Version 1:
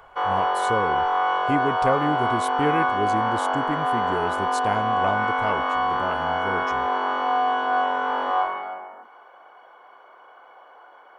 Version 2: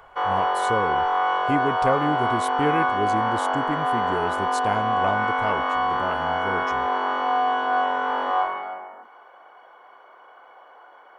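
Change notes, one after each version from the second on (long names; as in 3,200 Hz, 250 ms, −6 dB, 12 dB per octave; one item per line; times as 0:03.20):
first sound: remove notch filter 1,900 Hz, Q 20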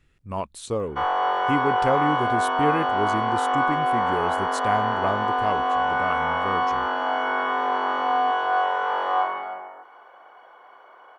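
first sound: entry +0.80 s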